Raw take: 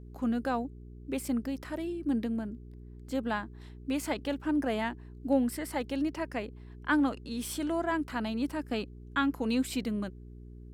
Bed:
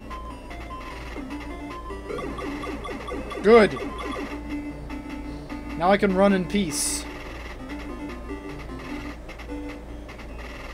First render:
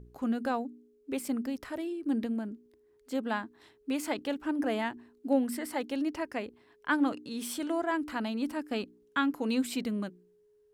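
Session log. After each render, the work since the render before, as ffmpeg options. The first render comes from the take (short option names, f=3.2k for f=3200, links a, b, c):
-af "bandreject=f=60:t=h:w=4,bandreject=f=120:t=h:w=4,bandreject=f=180:t=h:w=4,bandreject=f=240:t=h:w=4,bandreject=f=300:t=h:w=4,bandreject=f=360:t=h:w=4"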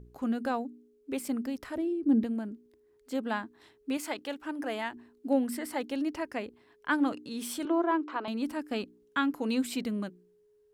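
-filter_complex "[0:a]asettb=1/sr,asplit=3[a][b][c];[a]atrim=end=1.764[d];[b]atrim=start=1.76:end=2.24,asetpts=PTS-STARTPTS,afade=t=in:d=0.004:c=qsin,afade=t=out:st=0.476:d=0.004:c=qsin,tiltshelf=f=700:g=8[e];[c]atrim=start=2.236[f];[d][e]acrossfade=d=0.004:c1=hsin:c2=qsin[g];[g][f]acrossfade=d=0.004:c1=qsin:c2=hsin,asettb=1/sr,asplit=3[h][i][j];[h]atrim=end=3.974[k];[i]atrim=start=3.97:end=4.93,asetpts=PTS-STARTPTS,afade=t=in:d=0.004:c=qsin,afade=t=out:st=0.956:d=0.004:c=qsin,lowshelf=f=350:g=-10[l];[j]atrim=start=4.926[m];[k][l]acrossfade=d=0.004:c1=hsin:c2=qsin[n];[n][m]acrossfade=d=0.004:c1=qsin:c2=hsin,asettb=1/sr,asplit=3[o][p][q];[o]atrim=end=7.654[r];[p]atrim=start=7.65:end=8.28,asetpts=PTS-STARTPTS,afade=t=in:d=0.004:c=qsin,afade=t=out:st=0.626:d=0.004:c=qsin,highpass=f=330:w=0.5412,highpass=f=330:w=1.3066,equalizer=f=350:t=q:w=4:g=10,equalizer=f=1.1k:t=q:w=4:g=8,equalizer=f=1.9k:t=q:w=4:g=-6,equalizer=f=2.9k:t=q:w=4:g=-3,equalizer=f=4.6k:t=q:w=4:g=-9,lowpass=f=4.9k:w=0.5412,lowpass=f=4.9k:w=1.3066[s];[q]atrim=start=8.276[t];[r][s]acrossfade=d=0.004:c1=hsin:c2=qsin[u];[u][t]acrossfade=d=0.004:c1=qsin:c2=hsin"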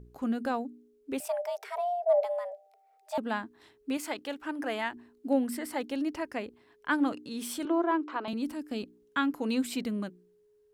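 -filter_complex "[0:a]asettb=1/sr,asplit=3[a][b][c];[a]atrim=end=1.204[d];[b]atrim=start=1.2:end=3.18,asetpts=PTS-STARTPTS,afade=t=in:d=0.004:c=qsin,afade=t=out:st=1.976:d=0.004:c=qsin,afreqshift=360[e];[c]atrim=start=3.176[f];[d][e]acrossfade=d=0.004:c1=hsin:c2=qsin[g];[g][f]acrossfade=d=0.004:c1=qsin:c2=hsin,asettb=1/sr,asplit=3[h][i][j];[h]atrim=end=4.364[k];[i]atrim=start=4.36:end=4.94,asetpts=PTS-STARTPTS,afade=t=in:d=0.004:c=qsin,afade=t=out:st=0.576:d=0.004:c=qsin,equalizer=f=1.7k:w=0.54:g=3[l];[j]atrim=start=4.936[m];[k][l]acrossfade=d=0.004:c1=hsin:c2=qsin[n];[n][m]acrossfade=d=0.004:c1=qsin:c2=hsin,asettb=1/sr,asplit=3[o][p][q];[o]atrim=end=8.334[r];[p]atrim=start=8.33:end=8.83,asetpts=PTS-STARTPTS,afade=t=in:d=0.004:c=qsin,afade=t=out:st=0.496:d=0.004:c=qsin,acrossover=split=490|3000[s][t][u];[t]acompressor=threshold=-48dB:ratio=6:attack=3.2:release=140:knee=2.83:detection=peak[v];[s][v][u]amix=inputs=3:normalize=0[w];[q]atrim=start=8.826[x];[r][w]acrossfade=d=0.004:c1=hsin:c2=qsin[y];[y][x]acrossfade=d=0.004:c1=qsin:c2=hsin"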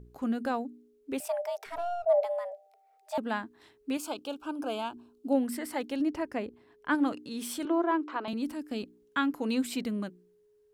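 -filter_complex "[0:a]asettb=1/sr,asplit=3[a][b][c];[a]atrim=end=1.664[d];[b]atrim=start=1.66:end=2.06,asetpts=PTS-STARTPTS,afade=t=in:d=0.004:c=qsin,afade=t=out:st=0.396:d=0.004:c=qsin,aeval=exprs='if(lt(val(0),0),0.447*val(0),val(0))':c=same[e];[c]atrim=start=2.056[f];[d][e]acrossfade=d=0.004:c1=hsin:c2=qsin[g];[g][f]acrossfade=d=0.004:c1=qsin:c2=hsin,asettb=1/sr,asplit=3[h][i][j];[h]atrim=end=3.984[k];[i]atrim=start=3.98:end=5.35,asetpts=PTS-STARTPTS,afade=t=in:d=0.004:c=qsin,afade=t=out:st=1.366:d=0.004:c=qsin,asuperstop=centerf=1900:order=4:qfactor=1.8[l];[j]atrim=start=5.346[m];[k][l]acrossfade=d=0.004:c1=hsin:c2=qsin[n];[n][m]acrossfade=d=0.004:c1=qsin:c2=hsin,asettb=1/sr,asplit=3[o][p][q];[o]atrim=end=6.004[r];[p]atrim=start=6:end=6.95,asetpts=PTS-STARTPTS,afade=t=in:d=0.004:c=qsin,afade=t=out:st=0.946:d=0.004:c=qsin,tiltshelf=f=970:g=3.5[s];[q]atrim=start=6.946[t];[r][s]acrossfade=d=0.004:c1=hsin:c2=qsin[u];[u][t]acrossfade=d=0.004:c1=qsin:c2=hsin"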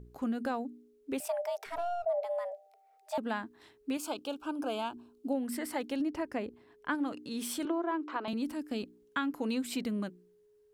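-af "acompressor=threshold=-29dB:ratio=6"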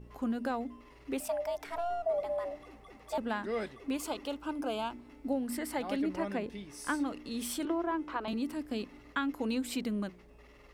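-filter_complex "[1:a]volume=-21dB[a];[0:a][a]amix=inputs=2:normalize=0"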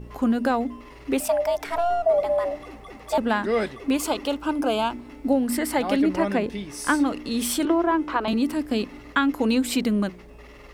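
-af "volume=11.5dB"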